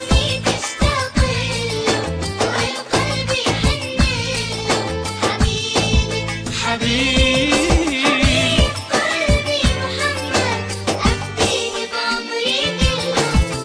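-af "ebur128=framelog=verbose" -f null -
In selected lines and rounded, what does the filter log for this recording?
Integrated loudness:
  I:         -17.8 LUFS
  Threshold: -27.7 LUFS
Loudness range:
  LRA:         3.2 LU
  Threshold: -37.6 LUFS
  LRA low:   -18.9 LUFS
  LRA high:  -15.7 LUFS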